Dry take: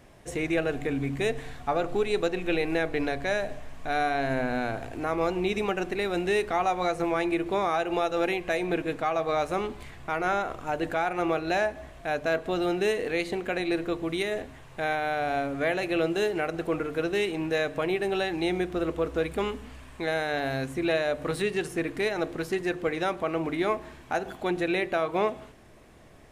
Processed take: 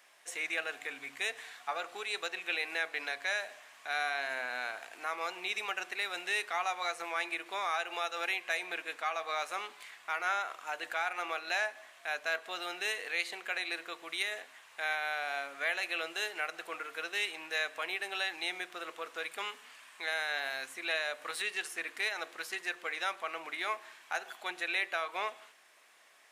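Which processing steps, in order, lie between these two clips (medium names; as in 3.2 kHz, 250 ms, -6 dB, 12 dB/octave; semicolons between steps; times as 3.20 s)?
high-pass 1.3 kHz 12 dB/octave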